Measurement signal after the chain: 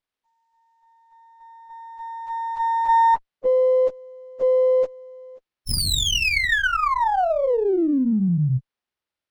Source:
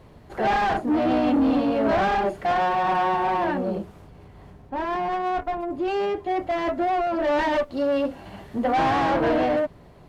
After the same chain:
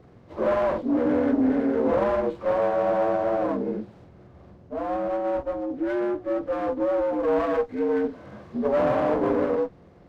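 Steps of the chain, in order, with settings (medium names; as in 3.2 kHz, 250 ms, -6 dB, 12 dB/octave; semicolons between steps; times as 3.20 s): frequency axis rescaled in octaves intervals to 75%; sliding maximum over 5 samples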